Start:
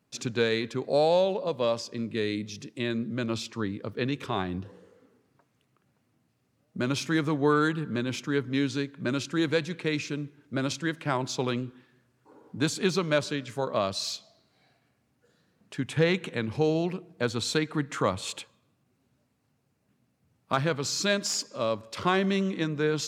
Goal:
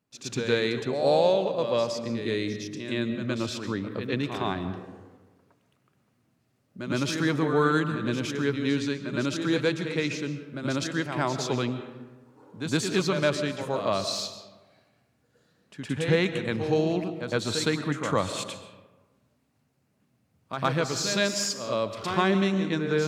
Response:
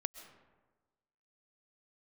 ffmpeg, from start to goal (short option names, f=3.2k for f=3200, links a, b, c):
-filter_complex "[0:a]asplit=2[a][b];[1:a]atrim=start_sample=2205,adelay=113[c];[b][c]afir=irnorm=-1:irlink=0,volume=9dB[d];[a][d]amix=inputs=2:normalize=0,volume=-7.5dB"